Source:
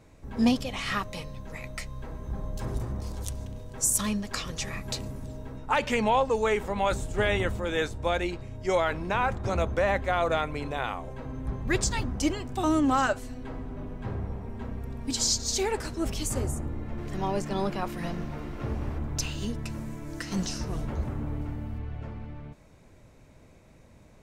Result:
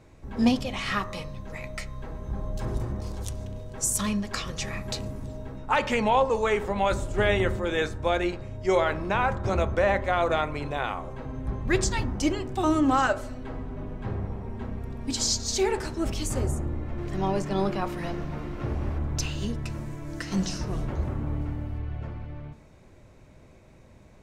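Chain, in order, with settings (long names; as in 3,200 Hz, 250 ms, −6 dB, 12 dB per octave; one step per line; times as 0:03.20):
high-shelf EQ 8,800 Hz −7 dB
convolution reverb RT60 0.70 s, pre-delay 3 ms, DRR 11.5 dB
level +1.5 dB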